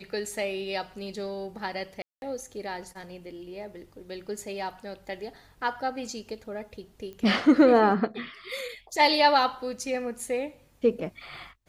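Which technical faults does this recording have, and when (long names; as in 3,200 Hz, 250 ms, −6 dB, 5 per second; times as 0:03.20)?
0:02.02–0:02.22: drop-out 201 ms
0:07.13: click −30 dBFS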